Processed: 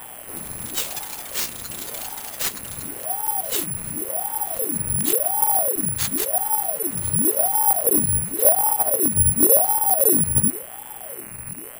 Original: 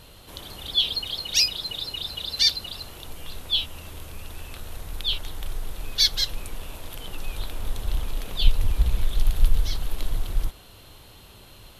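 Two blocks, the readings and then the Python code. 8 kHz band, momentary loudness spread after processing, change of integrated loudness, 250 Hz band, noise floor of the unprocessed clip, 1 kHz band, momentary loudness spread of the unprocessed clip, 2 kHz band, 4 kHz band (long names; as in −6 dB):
+16.5 dB, 16 LU, +7.0 dB, +16.0 dB, −48 dBFS, +19.0 dB, 20 LU, +1.0 dB, −12.0 dB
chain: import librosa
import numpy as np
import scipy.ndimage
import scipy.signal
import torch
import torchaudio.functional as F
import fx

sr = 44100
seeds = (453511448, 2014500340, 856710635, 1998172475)

p1 = fx.halfwave_hold(x, sr)
p2 = fx.band_shelf(p1, sr, hz=5400.0, db=-11.5, octaves=2.3)
p3 = fx.rider(p2, sr, range_db=4, speed_s=0.5)
p4 = fx.dmg_buzz(p3, sr, base_hz=120.0, harmonics=22, level_db=-41.0, tilt_db=0, odd_only=False)
p5 = 10.0 ** (-7.5 / 20.0) * np.tanh(p4 / 10.0 ** (-7.5 / 20.0))
p6 = p5 + fx.echo_feedback(p5, sr, ms=1033, feedback_pct=51, wet_db=-20.5, dry=0)
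p7 = (np.kron(p6[::4], np.eye(4)[0]) * 4)[:len(p6)]
p8 = fx.ring_lfo(p7, sr, carrier_hz=480.0, swing_pct=80, hz=0.92)
y = p8 * 10.0 ** (-4.0 / 20.0)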